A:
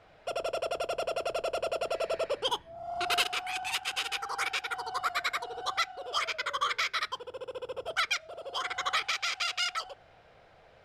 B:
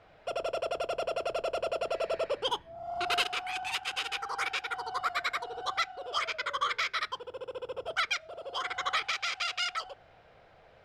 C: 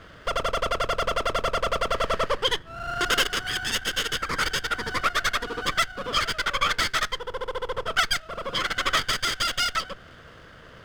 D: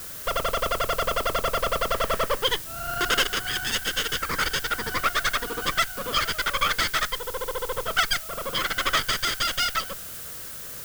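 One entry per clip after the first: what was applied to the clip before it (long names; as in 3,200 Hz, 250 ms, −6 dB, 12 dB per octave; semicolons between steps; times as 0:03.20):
high-shelf EQ 7,500 Hz −9.5 dB
lower of the sound and its delayed copy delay 0.61 ms; in parallel at +1 dB: downward compressor, threshold −43 dBFS, peak gain reduction 16 dB; on the sum: level +7 dB
background noise blue −38 dBFS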